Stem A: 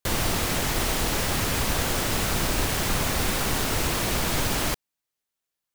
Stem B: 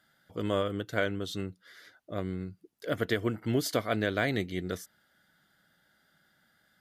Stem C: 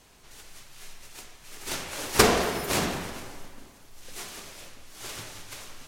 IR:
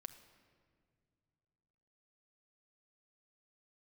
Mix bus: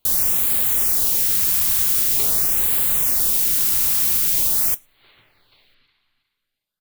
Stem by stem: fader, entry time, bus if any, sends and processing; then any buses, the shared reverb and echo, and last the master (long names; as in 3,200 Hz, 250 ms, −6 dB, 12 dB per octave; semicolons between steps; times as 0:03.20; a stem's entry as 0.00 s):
+3.0 dB, 0.00 s, send −19 dB, no echo send, high-shelf EQ 10,000 Hz +10 dB; noise that follows the level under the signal 12 dB
−11.0 dB, 0.00 s, no send, no echo send, no processing
−3.0 dB, 0.00 s, no send, echo send −10.5 dB, Chebyshev low-pass filter 4,300 Hz, order 6; parametric band 2,100 Hz +5 dB 0.31 octaves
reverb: on, pre-delay 6 ms
echo: repeating echo 363 ms, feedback 29%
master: first-order pre-emphasis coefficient 0.8; auto-filter notch sine 0.45 Hz 490–5,800 Hz